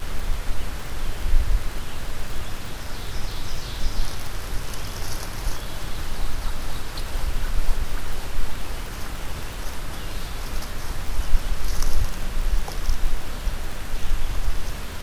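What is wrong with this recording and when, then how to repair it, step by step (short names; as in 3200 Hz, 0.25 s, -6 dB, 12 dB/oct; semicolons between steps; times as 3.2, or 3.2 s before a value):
crackle 25/s -27 dBFS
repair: de-click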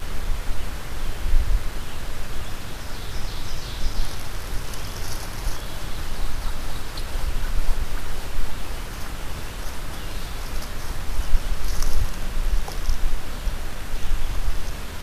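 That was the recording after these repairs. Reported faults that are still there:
none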